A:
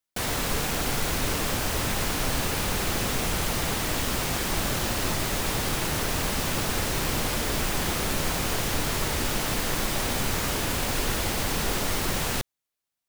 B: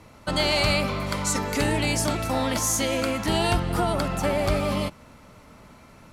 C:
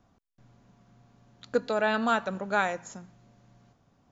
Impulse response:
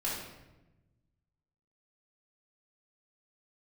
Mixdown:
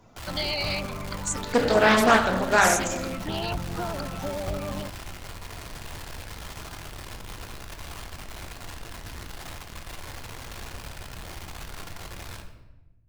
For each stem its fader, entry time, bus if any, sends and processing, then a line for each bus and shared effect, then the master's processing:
−12.0 dB, 0.00 s, send −4.5 dB, drawn EQ curve 100 Hz 0 dB, 230 Hz −17 dB, 900 Hz −5 dB, 4,100 Hz −11 dB, 6,400 Hz −25 dB; brickwall limiter −24 dBFS, peak gain reduction 5.5 dB; comparator with hysteresis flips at −46 dBFS
−7.5 dB, 0.00 s, no send, gate on every frequency bin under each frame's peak −15 dB strong
+1.0 dB, 0.00 s, send −3.5 dB, no processing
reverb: on, RT60 1.0 s, pre-delay 3 ms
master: high-shelf EQ 3,300 Hz +8.5 dB; highs frequency-modulated by the lows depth 0.39 ms

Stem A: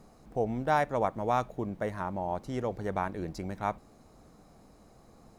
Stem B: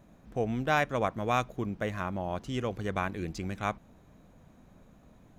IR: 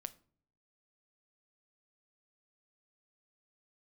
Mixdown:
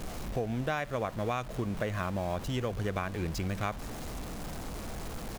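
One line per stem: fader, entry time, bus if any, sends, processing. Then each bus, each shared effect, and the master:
−8.5 dB, 0.00 s, no send, sign of each sample alone; low-shelf EQ 76 Hz +11 dB
+3.0 dB, 1.4 ms, no send, no processing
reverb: not used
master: downward compressor 10 to 1, threshold −28 dBFS, peak gain reduction 10.5 dB

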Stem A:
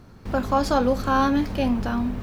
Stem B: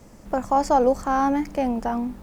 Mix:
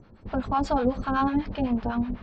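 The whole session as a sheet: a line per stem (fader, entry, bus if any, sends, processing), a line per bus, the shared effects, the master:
−1.0 dB, 0.00 s, no send, low-pass filter 4,100 Hz 24 dB per octave; two-band tremolo in antiphase 8 Hz, depth 100%, crossover 690 Hz
−9.0 dB, 0.00 s, no send, gate on every frequency bin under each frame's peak −20 dB strong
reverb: not used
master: no processing

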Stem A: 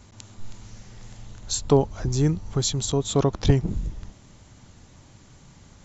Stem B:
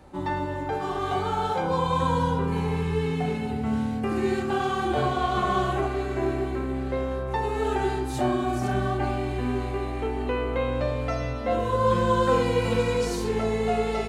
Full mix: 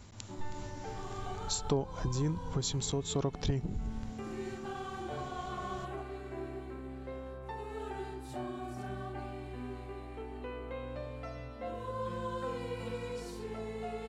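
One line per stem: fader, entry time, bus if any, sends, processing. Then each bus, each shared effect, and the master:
+1.0 dB, 0.00 s, no send, amplitude modulation by smooth noise, depth 50%
−15.0 dB, 0.15 s, no send, no processing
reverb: not used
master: notch filter 6,400 Hz, Q 19; downward compressor 2.5 to 1, threshold −33 dBFS, peak gain reduction 13 dB

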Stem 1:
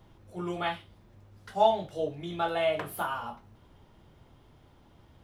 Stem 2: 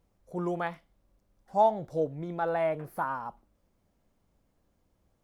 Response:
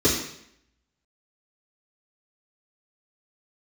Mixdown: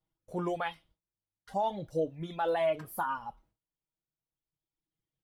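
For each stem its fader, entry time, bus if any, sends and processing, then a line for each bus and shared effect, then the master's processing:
−11.5 dB, 0.00 s, no send, high-shelf EQ 2,900 Hz +6 dB; comb filter 6.3 ms, depth 91%
+1.0 dB, 1.9 ms, polarity flipped, no send, noise gate with hold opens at −55 dBFS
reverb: not used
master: noise gate with hold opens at −52 dBFS; reverb reduction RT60 1.8 s; brickwall limiter −22 dBFS, peak gain reduction 12 dB

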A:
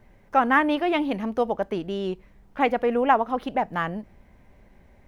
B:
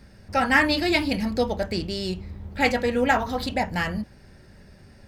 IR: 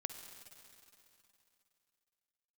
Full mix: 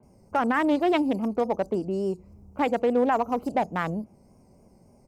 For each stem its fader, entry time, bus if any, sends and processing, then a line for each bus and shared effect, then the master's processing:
+2.0 dB, 0.00 s, no send, adaptive Wiener filter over 25 samples; high-pass filter 120 Hz 24 dB per octave; brickwall limiter −15.5 dBFS, peak gain reduction 9.5 dB
−6.0 dB, 28 ms, no send, inverse Chebyshev band-stop filter 930–3,200 Hz, stop band 50 dB; tilt shelving filter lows −6 dB; downward compressor 3 to 1, threshold −40 dBFS, peak gain reduction 11.5 dB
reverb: not used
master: high-shelf EQ 4,400 Hz −4.5 dB; pitch vibrato 3.5 Hz 62 cents

